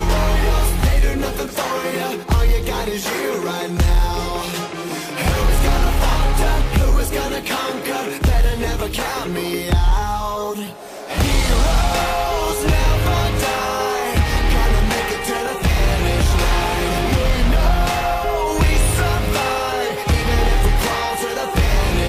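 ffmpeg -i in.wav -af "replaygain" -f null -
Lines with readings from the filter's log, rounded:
track_gain = +3.5 dB
track_peak = 0.273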